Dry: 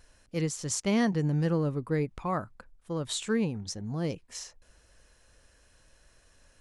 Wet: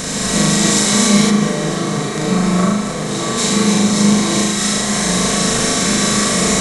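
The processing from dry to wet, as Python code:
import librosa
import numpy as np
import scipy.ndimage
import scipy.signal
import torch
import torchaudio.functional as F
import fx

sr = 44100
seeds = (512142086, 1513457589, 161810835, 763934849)

y = fx.bin_compress(x, sr, power=0.2)
y = fx.peak_eq(y, sr, hz=200.0, db=8.0, octaves=0.54)
y = fx.room_flutter(y, sr, wall_m=6.6, rt60_s=0.75)
y = fx.rev_gated(y, sr, seeds[0], gate_ms=320, shape='rising', drr_db=-5.0)
y = fx.rider(y, sr, range_db=10, speed_s=2.0)
y = fx.high_shelf(y, sr, hz=2300.0, db=fx.steps((0.0, 10.5), (1.29, 3.0), (3.37, 9.5)))
y = y * librosa.db_to_amplitude(-5.5)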